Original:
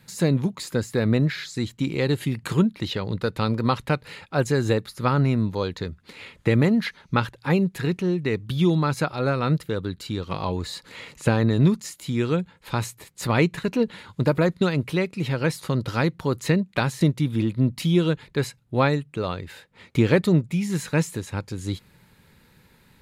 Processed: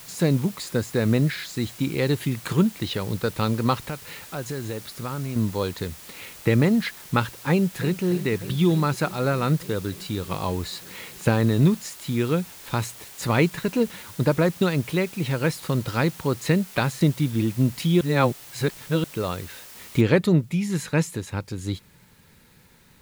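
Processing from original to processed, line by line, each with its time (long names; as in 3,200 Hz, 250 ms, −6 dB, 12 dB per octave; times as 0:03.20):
0:03.88–0:05.36: downward compressor 3 to 1, threshold −30 dBFS
0:07.51–0:08.05: delay throw 300 ms, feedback 80%, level −13.5 dB
0:18.01–0:19.04: reverse
0:20.01: noise floor change −44 dB −62 dB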